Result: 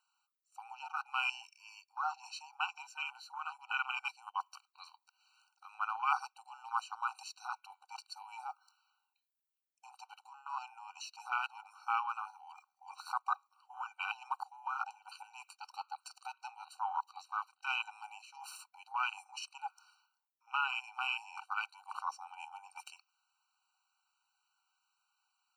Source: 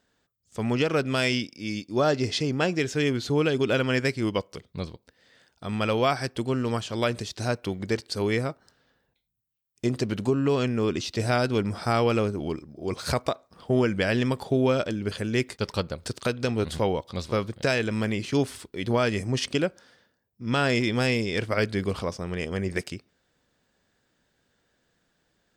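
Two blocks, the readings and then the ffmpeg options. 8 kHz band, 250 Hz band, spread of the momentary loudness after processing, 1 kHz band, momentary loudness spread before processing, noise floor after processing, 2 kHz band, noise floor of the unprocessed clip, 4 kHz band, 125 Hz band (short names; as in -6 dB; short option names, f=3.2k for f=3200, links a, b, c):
-14.5 dB, under -40 dB, 18 LU, -4.5 dB, 9 LU, under -85 dBFS, -9.5 dB, -73 dBFS, -13.5 dB, under -40 dB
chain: -filter_complex "[0:a]acrossover=split=160|3000[a][b][c];[a]acompressor=threshold=-40dB:ratio=6[d];[d][b][c]amix=inputs=3:normalize=0,afwtdn=0.0398,areverse,acompressor=threshold=-36dB:ratio=8,areverse,afftfilt=real='re*eq(mod(floor(b*sr/1024/770),2),1)':imag='im*eq(mod(floor(b*sr/1024/770),2),1)':win_size=1024:overlap=0.75,volume=12.5dB"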